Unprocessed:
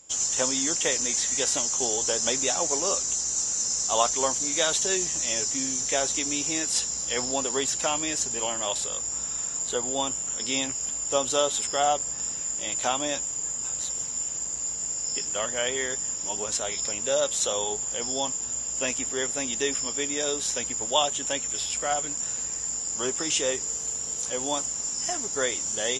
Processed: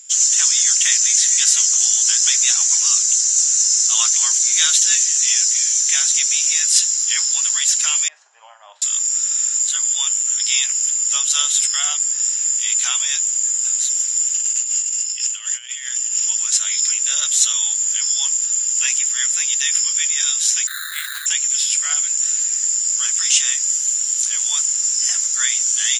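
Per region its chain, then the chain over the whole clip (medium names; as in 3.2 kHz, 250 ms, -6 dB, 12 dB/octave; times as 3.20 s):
8.08–8.82 s: resonant low-pass 690 Hz, resonance Q 2.7 + doubling 43 ms -12 dB
14.34–16.26 s: high-pass 380 Hz + peaking EQ 2.8 kHz +8.5 dB 0.35 oct + compressor with a negative ratio -33 dBFS, ratio -0.5
20.67–21.26 s: band-pass filter 5.5 kHz, Q 4.1 + tilt EQ +1.5 dB/octave + careless resampling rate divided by 8×, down none, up hold
whole clip: high-pass 1.5 kHz 24 dB/octave; treble shelf 3.9 kHz +7.5 dB; trim +6 dB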